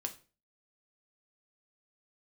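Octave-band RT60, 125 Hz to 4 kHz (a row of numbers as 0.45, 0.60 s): 0.45, 0.40, 0.40, 0.35, 0.35, 0.30 s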